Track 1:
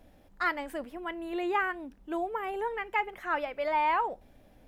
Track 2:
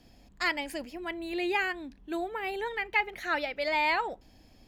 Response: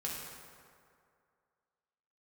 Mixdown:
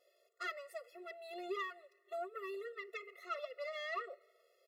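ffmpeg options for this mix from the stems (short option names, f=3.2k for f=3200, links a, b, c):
-filter_complex "[0:a]bandreject=f=420:w=12,asplit=2[a][b];[b]adelay=3.5,afreqshift=2.2[c];[a][c]amix=inputs=2:normalize=1,volume=-1dB,asplit=2[d][e];[1:a]adelay=2.1,volume=-5.5dB,asplit=2[f][g];[g]volume=-23dB[h];[e]apad=whole_len=206321[i];[f][i]sidechaincompress=threshold=-37dB:ratio=8:attack=6.5:release=614[j];[2:a]atrim=start_sample=2205[k];[h][k]afir=irnorm=-1:irlink=0[l];[d][j][l]amix=inputs=3:normalize=0,aeval=exprs='(tanh(22.4*val(0)+0.75)-tanh(0.75))/22.4':c=same,afftfilt=real='re*eq(mod(floor(b*sr/1024/360),2),1)':imag='im*eq(mod(floor(b*sr/1024/360),2),1)':win_size=1024:overlap=0.75"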